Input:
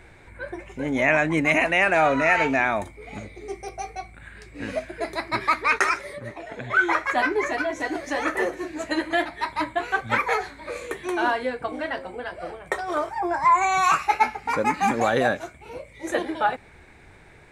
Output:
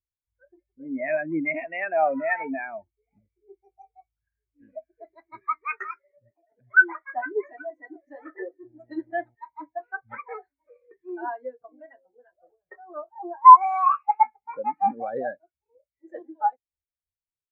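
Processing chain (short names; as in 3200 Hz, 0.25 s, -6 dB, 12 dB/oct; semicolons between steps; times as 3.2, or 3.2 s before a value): 8.62–9.34 buzz 120 Hz, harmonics 7, -37 dBFS -4 dB/oct; spectral expander 2.5:1; gain +4.5 dB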